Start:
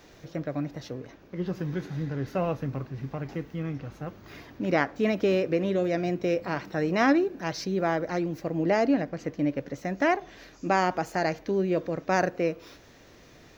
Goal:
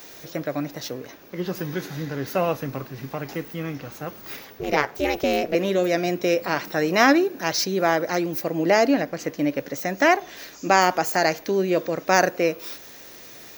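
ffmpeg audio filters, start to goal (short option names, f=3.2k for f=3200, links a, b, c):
-filter_complex "[0:a]asettb=1/sr,asplit=3[a][b][c];[a]atrim=end=4.364[d];[b]atrim=start=4.36:end=5.55,asetpts=PTS-STARTPTS,afade=t=in:d=0.004:c=qsin,afade=t=out:st=1.186:d=0.004:c=qsin,aeval=exprs='val(0)*sin(2*PI*150*n/s)':c=same[e];[c]atrim=start=5.546[f];[d][e]acrossfade=d=0.004:c1=hsin:c2=qsin[g];[g][f]acrossfade=d=0.004:c1=qsin:c2=hsin,aemphasis=mode=production:type=bsi,volume=7dB"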